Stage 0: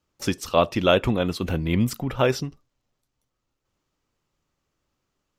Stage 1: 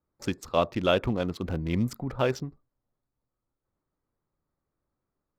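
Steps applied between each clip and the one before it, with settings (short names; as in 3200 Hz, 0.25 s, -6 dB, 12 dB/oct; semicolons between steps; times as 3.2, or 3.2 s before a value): Wiener smoothing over 15 samples; gain -5 dB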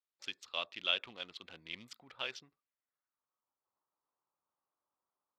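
band-pass sweep 3200 Hz -> 970 Hz, 2.41–3.43; gain +1 dB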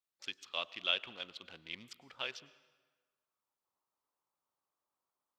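plate-style reverb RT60 1.5 s, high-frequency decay 0.75×, pre-delay 90 ms, DRR 19 dB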